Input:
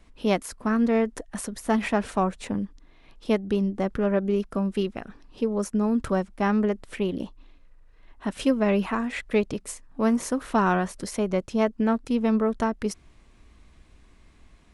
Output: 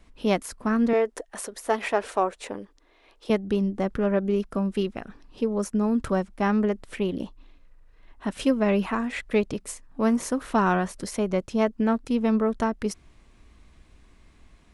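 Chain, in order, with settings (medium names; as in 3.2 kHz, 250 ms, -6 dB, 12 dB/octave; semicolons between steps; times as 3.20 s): 0.93–3.30 s: resonant low shelf 280 Hz -12.5 dB, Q 1.5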